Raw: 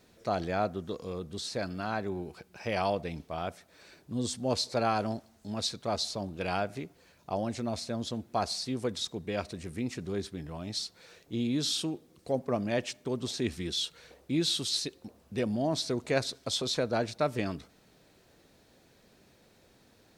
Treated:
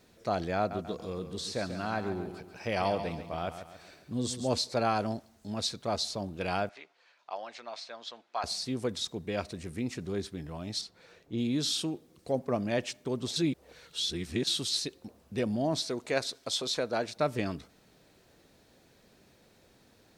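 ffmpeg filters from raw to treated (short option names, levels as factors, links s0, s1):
-filter_complex "[0:a]asettb=1/sr,asplit=3[s0][s1][s2];[s0]atrim=end=0.574[s3];[s1]atrim=start=0.57:end=4.58,asetpts=PTS-STARTPTS,afade=t=in:d=0.004:c=qsin,afade=t=out:st=4.006:d=0.004:c=qsin,aecho=1:1:138|276|414|552|690:0.316|0.142|0.064|0.0288|0.013,atrim=end_sample=176841[s4];[s2]atrim=start=4.576[s5];[s3][s4]acrossfade=d=0.004:c1=hsin:c2=qsin[s6];[s6][s5]acrossfade=d=0.004:c1=qsin:c2=hsin,asettb=1/sr,asplit=3[s7][s8][s9];[s7]atrim=end=6.694[s10];[s8]atrim=start=6.69:end=8.44,asetpts=PTS-STARTPTS,afade=t=in:d=0.004:c=qsin,afade=t=out:st=1.746:d=0.004:c=qsin,asuperpass=centerf=1900:order=4:qfactor=0.52[s11];[s9]atrim=start=8.436[s12];[s10][s11]acrossfade=d=0.004:c1=hsin:c2=qsin[s13];[s13][s12]acrossfade=d=0.004:c1=qsin:c2=hsin,asettb=1/sr,asplit=3[s14][s15][s16];[s14]atrim=end=10.814[s17];[s15]atrim=start=10.81:end=11.38,asetpts=PTS-STARTPTS,afade=t=in:d=0.004:c=qsin,afade=t=out:st=0.566:d=0.004:c=qsin,highshelf=f=3700:g=-10[s18];[s16]atrim=start=11.376[s19];[s17][s18]acrossfade=d=0.004:c1=hsin:c2=qsin[s20];[s20][s19]acrossfade=d=0.004:c1=qsin:c2=hsin,asettb=1/sr,asplit=3[s21][s22][s23];[s21]atrim=end=15.834[s24];[s22]atrim=start=15.83:end=17.17,asetpts=PTS-STARTPTS,afade=t=in:d=0.004:c=qsin,afade=t=out:st=1.336:d=0.004:c=qsin,equalizer=f=85:t=o:w=2.8:g=-10[s25];[s23]atrim=start=17.166[s26];[s24][s25]acrossfade=d=0.004:c1=hsin:c2=qsin[s27];[s27][s26]acrossfade=d=0.004:c1=qsin:c2=hsin,asplit=3[s28][s29][s30];[s28]atrim=end=13.362[s31];[s29]atrim=start=13.358:end=14.472,asetpts=PTS-STARTPTS,areverse[s32];[s30]atrim=start=14.468[s33];[s31][s32]acrossfade=d=0.004:c1=hsin:c2=hsin[s34];[s34][s33]acrossfade=d=0.004:c1=hsin:c2=hsin"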